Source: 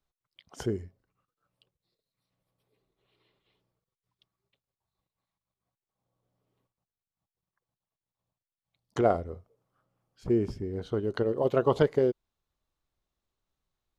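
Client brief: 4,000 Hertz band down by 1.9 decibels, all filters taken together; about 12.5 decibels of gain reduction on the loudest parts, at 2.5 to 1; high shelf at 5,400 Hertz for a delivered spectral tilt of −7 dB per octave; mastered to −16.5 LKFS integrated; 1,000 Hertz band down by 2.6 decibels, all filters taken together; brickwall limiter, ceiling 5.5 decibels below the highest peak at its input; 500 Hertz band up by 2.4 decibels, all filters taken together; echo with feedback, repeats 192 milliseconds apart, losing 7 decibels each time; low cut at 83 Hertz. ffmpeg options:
ffmpeg -i in.wav -af "highpass=83,equalizer=frequency=500:width_type=o:gain=4.5,equalizer=frequency=1000:width_type=o:gain=-7,equalizer=frequency=4000:width_type=o:gain=-4,highshelf=frequency=5400:gain=4.5,acompressor=threshold=-36dB:ratio=2.5,alimiter=level_in=2.5dB:limit=-24dB:level=0:latency=1,volume=-2.5dB,aecho=1:1:192|384|576|768|960:0.447|0.201|0.0905|0.0407|0.0183,volume=22.5dB" out.wav

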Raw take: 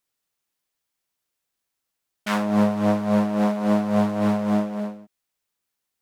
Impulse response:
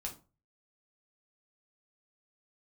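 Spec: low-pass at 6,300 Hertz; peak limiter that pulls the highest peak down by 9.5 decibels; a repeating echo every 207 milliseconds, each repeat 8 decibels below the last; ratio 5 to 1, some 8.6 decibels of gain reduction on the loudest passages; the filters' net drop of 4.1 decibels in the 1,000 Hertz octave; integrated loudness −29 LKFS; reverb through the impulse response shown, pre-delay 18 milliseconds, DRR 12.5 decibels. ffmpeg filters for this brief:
-filter_complex "[0:a]lowpass=6300,equalizer=frequency=1000:width_type=o:gain=-5.5,acompressor=threshold=-26dB:ratio=5,alimiter=level_in=2.5dB:limit=-24dB:level=0:latency=1,volume=-2.5dB,aecho=1:1:207|414|621|828|1035:0.398|0.159|0.0637|0.0255|0.0102,asplit=2[link_01][link_02];[1:a]atrim=start_sample=2205,adelay=18[link_03];[link_02][link_03]afir=irnorm=-1:irlink=0,volume=-11dB[link_04];[link_01][link_04]amix=inputs=2:normalize=0,volume=-0.5dB"

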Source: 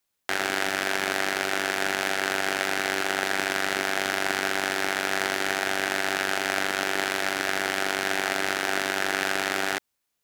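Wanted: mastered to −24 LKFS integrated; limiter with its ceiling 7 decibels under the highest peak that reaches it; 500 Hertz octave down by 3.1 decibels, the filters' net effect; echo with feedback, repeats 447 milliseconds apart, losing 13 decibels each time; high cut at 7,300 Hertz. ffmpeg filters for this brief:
ffmpeg -i in.wav -af "lowpass=7300,equalizer=frequency=500:width_type=o:gain=-4.5,alimiter=limit=-13dB:level=0:latency=1,aecho=1:1:447|894|1341:0.224|0.0493|0.0108,volume=6.5dB" out.wav

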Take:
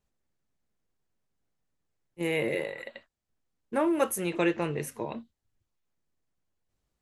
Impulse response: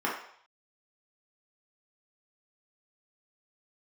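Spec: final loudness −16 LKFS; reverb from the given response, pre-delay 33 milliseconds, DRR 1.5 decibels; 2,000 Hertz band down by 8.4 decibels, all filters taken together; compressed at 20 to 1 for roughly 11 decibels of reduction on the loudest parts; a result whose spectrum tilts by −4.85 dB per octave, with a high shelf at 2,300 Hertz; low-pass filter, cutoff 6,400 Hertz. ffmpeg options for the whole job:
-filter_complex "[0:a]lowpass=6400,equalizer=frequency=2000:width_type=o:gain=-8,highshelf=frequency=2300:gain=-4,acompressor=threshold=-32dB:ratio=20,asplit=2[link_01][link_02];[1:a]atrim=start_sample=2205,adelay=33[link_03];[link_02][link_03]afir=irnorm=-1:irlink=0,volume=-12dB[link_04];[link_01][link_04]amix=inputs=2:normalize=0,volume=20.5dB"

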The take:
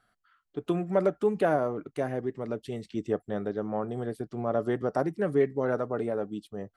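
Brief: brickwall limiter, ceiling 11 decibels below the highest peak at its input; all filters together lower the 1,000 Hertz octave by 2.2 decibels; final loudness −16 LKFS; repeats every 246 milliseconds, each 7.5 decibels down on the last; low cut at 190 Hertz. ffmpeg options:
ffmpeg -i in.wav -af "highpass=190,equalizer=frequency=1000:width_type=o:gain=-3.5,alimiter=level_in=1dB:limit=-24dB:level=0:latency=1,volume=-1dB,aecho=1:1:246|492|738|984|1230:0.422|0.177|0.0744|0.0312|0.0131,volume=19.5dB" out.wav

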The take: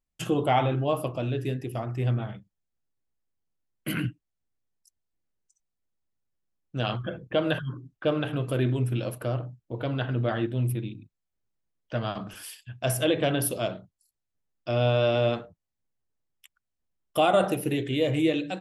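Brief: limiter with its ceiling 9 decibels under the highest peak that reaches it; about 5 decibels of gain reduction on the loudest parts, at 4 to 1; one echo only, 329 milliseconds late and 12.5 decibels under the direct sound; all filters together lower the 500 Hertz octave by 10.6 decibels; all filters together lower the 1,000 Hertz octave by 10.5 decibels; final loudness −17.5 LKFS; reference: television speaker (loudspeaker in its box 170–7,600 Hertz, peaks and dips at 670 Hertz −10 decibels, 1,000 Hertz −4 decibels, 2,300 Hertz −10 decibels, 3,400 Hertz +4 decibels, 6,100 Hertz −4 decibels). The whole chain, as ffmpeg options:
ffmpeg -i in.wav -af "equalizer=frequency=500:width_type=o:gain=-7.5,equalizer=frequency=1000:width_type=o:gain=-5,acompressor=threshold=-28dB:ratio=4,alimiter=level_in=2.5dB:limit=-24dB:level=0:latency=1,volume=-2.5dB,highpass=frequency=170:width=0.5412,highpass=frequency=170:width=1.3066,equalizer=frequency=670:width_type=q:width=4:gain=-10,equalizer=frequency=1000:width_type=q:width=4:gain=-4,equalizer=frequency=2300:width_type=q:width=4:gain=-10,equalizer=frequency=3400:width_type=q:width=4:gain=4,equalizer=frequency=6100:width_type=q:width=4:gain=-4,lowpass=frequency=7600:width=0.5412,lowpass=frequency=7600:width=1.3066,aecho=1:1:329:0.237,volume=23dB" out.wav

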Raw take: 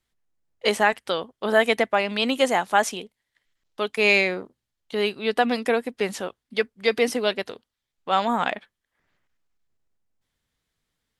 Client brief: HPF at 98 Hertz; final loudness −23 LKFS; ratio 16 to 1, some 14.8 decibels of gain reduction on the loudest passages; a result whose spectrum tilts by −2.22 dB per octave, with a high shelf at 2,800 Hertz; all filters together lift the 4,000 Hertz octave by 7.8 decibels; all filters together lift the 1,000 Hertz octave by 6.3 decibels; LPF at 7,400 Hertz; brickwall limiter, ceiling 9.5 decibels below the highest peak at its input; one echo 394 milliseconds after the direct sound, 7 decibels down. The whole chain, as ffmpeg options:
ffmpeg -i in.wav -af "highpass=98,lowpass=7400,equalizer=frequency=1000:width_type=o:gain=7.5,highshelf=frequency=2800:gain=7,equalizer=frequency=4000:width_type=o:gain=4.5,acompressor=threshold=-23dB:ratio=16,alimiter=limit=-19dB:level=0:latency=1,aecho=1:1:394:0.447,volume=9dB" out.wav

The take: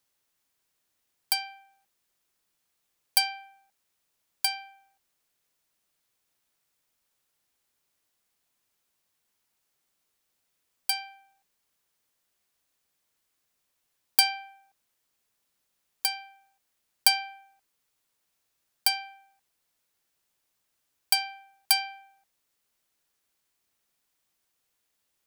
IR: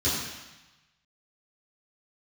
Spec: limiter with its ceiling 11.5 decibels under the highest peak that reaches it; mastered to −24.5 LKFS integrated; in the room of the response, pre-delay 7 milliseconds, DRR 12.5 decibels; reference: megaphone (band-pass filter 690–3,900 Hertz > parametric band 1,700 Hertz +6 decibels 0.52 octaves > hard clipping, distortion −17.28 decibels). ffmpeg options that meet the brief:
-filter_complex "[0:a]alimiter=limit=-15dB:level=0:latency=1,asplit=2[link_01][link_02];[1:a]atrim=start_sample=2205,adelay=7[link_03];[link_02][link_03]afir=irnorm=-1:irlink=0,volume=-24dB[link_04];[link_01][link_04]amix=inputs=2:normalize=0,highpass=690,lowpass=3900,equalizer=frequency=1700:width_type=o:width=0.52:gain=6,asoftclip=type=hard:threshold=-22dB,volume=11dB"

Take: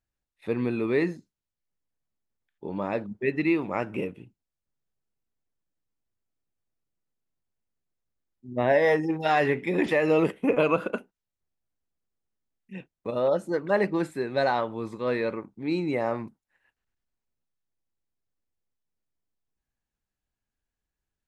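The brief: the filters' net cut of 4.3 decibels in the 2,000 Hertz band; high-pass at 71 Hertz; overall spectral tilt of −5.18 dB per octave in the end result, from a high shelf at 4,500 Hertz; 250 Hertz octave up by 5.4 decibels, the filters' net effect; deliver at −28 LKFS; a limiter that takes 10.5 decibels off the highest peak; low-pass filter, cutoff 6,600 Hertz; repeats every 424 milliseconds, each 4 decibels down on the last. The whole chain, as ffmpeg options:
ffmpeg -i in.wav -af "highpass=71,lowpass=6600,equalizer=frequency=250:width_type=o:gain=7.5,equalizer=frequency=2000:width_type=o:gain=-7,highshelf=frequency=4500:gain=8.5,alimiter=limit=-18.5dB:level=0:latency=1,aecho=1:1:424|848|1272|1696|2120|2544|2968|3392|3816:0.631|0.398|0.25|0.158|0.0994|0.0626|0.0394|0.0249|0.0157" out.wav

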